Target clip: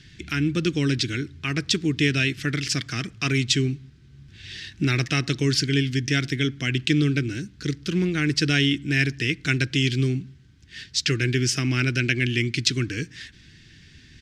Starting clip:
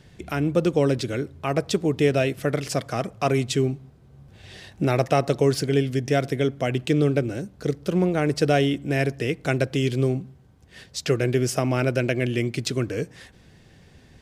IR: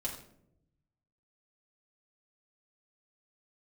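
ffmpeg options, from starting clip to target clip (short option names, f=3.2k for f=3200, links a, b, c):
-af "firequalizer=gain_entry='entry(130,0);entry(200,-3);entry(310,0);entry(550,-22);entry(790,-18);entry(1600,4);entry(3200,7);entry(5400,7);entry(11000,-9)':delay=0.05:min_phase=1,volume=1.5dB"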